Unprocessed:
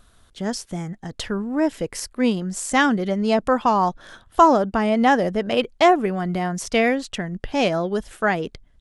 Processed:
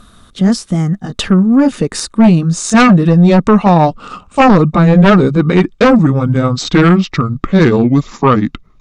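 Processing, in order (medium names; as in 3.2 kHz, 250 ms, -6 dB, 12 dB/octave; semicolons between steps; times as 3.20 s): pitch bend over the whole clip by -8 st starting unshifted; small resonant body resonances 200/1200/3700 Hz, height 10 dB, ringing for 25 ms; sine folder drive 8 dB, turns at -1 dBFS; trim -1.5 dB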